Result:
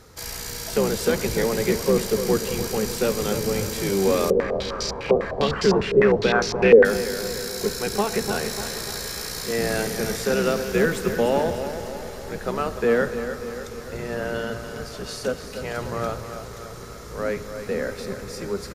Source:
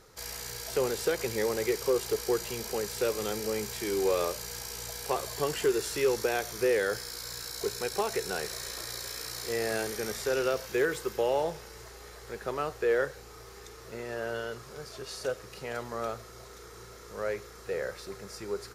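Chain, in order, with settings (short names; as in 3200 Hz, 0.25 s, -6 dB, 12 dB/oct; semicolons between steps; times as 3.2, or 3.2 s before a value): octaver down 1 oct, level +2 dB; feedback echo 0.296 s, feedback 53%, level -10 dB; reverb RT60 4.8 s, pre-delay 15 ms, DRR 14 dB; 4.3–6.85 stepped low-pass 9.9 Hz 470–5100 Hz; gain +6 dB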